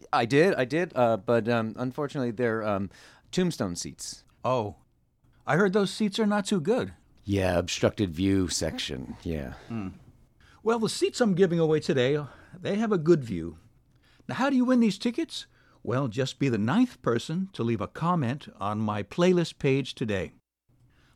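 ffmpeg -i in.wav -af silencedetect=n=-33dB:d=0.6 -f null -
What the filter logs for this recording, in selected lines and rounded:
silence_start: 4.70
silence_end: 5.48 | silence_duration: 0.78
silence_start: 9.89
silence_end: 10.65 | silence_duration: 0.77
silence_start: 13.50
silence_end: 14.29 | silence_duration: 0.79
silence_start: 20.27
silence_end: 21.16 | silence_duration: 0.89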